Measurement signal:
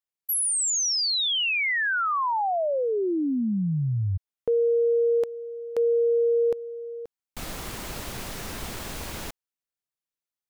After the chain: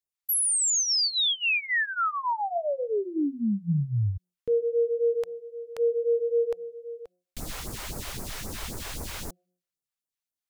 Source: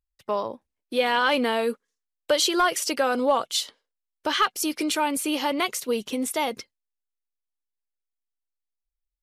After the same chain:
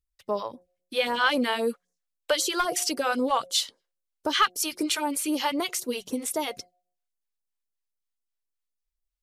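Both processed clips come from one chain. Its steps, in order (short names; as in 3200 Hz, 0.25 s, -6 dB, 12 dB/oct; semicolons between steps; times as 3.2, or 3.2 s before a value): de-hum 179.3 Hz, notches 4; phaser stages 2, 3.8 Hz, lowest notch 170–3000 Hz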